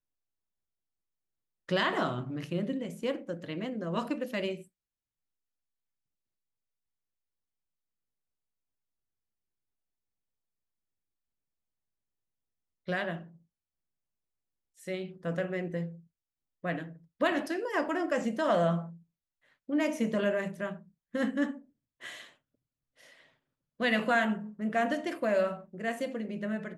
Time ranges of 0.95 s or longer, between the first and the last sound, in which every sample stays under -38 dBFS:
4.61–12.88
13.19–14.88
22.21–23.8

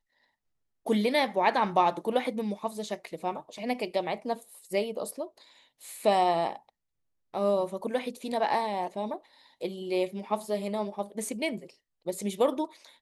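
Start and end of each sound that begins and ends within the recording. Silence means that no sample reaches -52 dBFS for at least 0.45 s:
0.86–6.69

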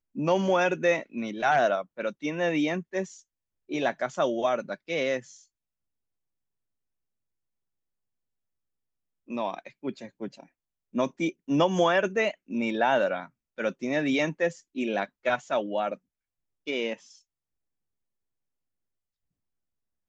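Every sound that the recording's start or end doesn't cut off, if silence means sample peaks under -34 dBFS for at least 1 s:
9.3–16.94

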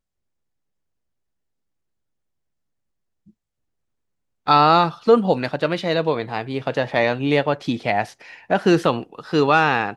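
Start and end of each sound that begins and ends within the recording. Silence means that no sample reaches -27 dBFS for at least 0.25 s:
4.47–8.05

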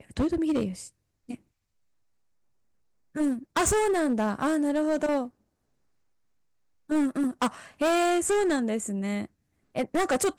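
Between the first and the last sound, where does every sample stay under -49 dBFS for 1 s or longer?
1.36–3.15
5.29–6.89

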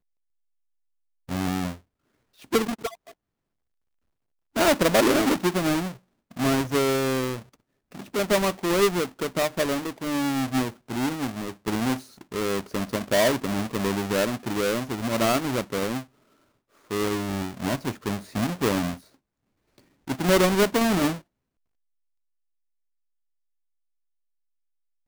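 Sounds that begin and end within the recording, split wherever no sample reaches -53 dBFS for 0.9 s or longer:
1.29–3.12
4.56–21.22

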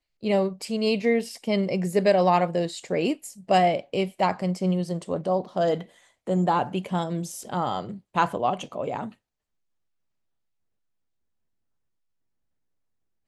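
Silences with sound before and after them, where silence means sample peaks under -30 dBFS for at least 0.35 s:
5.82–6.28

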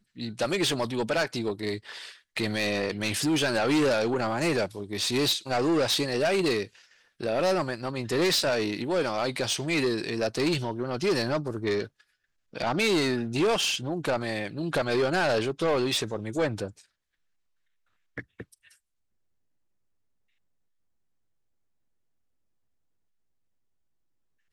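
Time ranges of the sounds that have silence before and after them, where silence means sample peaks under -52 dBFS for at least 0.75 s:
18.17–18.74

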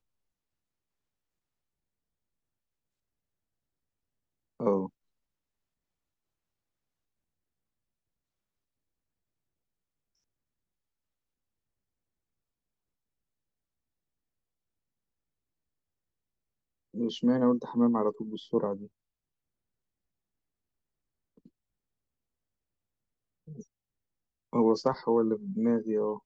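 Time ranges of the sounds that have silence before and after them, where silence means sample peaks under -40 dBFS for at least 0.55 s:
4.6–4.87
16.95–18.86
23.48–23.61

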